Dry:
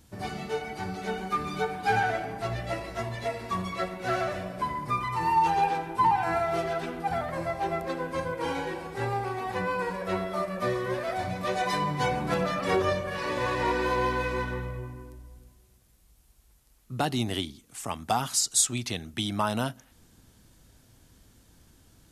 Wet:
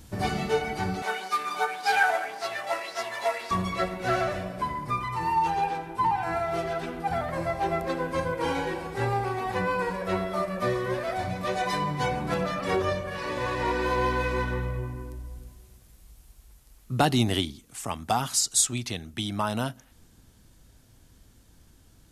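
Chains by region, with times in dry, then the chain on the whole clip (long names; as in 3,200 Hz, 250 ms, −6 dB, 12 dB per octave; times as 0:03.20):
0:01.02–0:03.51: variable-slope delta modulation 64 kbit/s + high-pass filter 580 Hz + auto-filter bell 1.8 Hz 870–5,300 Hz +9 dB
whole clip: speech leveller 2 s; low-shelf EQ 64 Hz +6 dB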